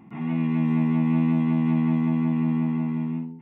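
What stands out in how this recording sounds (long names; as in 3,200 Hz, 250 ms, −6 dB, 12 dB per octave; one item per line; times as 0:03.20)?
background noise floor −42 dBFS
spectral slope −9.0 dB per octave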